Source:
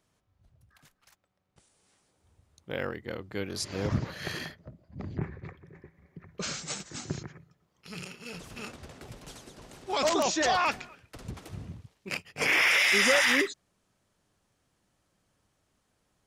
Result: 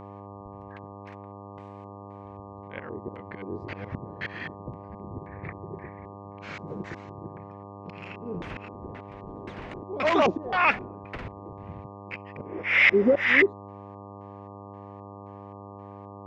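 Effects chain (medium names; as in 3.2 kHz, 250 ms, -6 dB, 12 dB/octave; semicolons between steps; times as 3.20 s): LFO low-pass square 1.9 Hz 390–2200 Hz; slow attack 501 ms; mains buzz 100 Hz, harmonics 12, -51 dBFS -2 dB/octave; trim +8 dB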